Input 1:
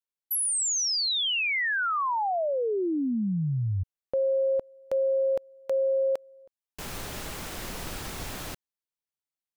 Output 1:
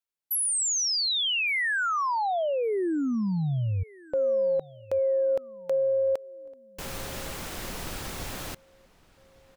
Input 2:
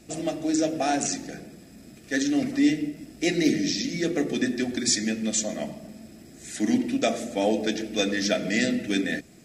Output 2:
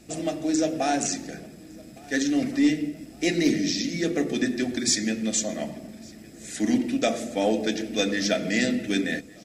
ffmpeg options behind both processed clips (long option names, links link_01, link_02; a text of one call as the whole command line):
ffmpeg -i in.wav -filter_complex "[0:a]aeval=exprs='0.316*(cos(1*acos(clip(val(0)/0.316,-1,1)))-cos(1*PI/2))+0.00355*(cos(5*acos(clip(val(0)/0.316,-1,1)))-cos(5*PI/2))+0.00562*(cos(6*acos(clip(val(0)/0.316,-1,1)))-cos(6*PI/2))+0.00316*(cos(8*acos(clip(val(0)/0.316,-1,1)))-cos(8*PI/2))':channel_layout=same,asplit=2[link_01][link_02];[link_02]adelay=1160,lowpass=frequency=4700:poles=1,volume=-23.5dB,asplit=2[link_03][link_04];[link_04]adelay=1160,lowpass=frequency=4700:poles=1,volume=0.46,asplit=2[link_05][link_06];[link_06]adelay=1160,lowpass=frequency=4700:poles=1,volume=0.46[link_07];[link_01][link_03][link_05][link_07]amix=inputs=4:normalize=0" out.wav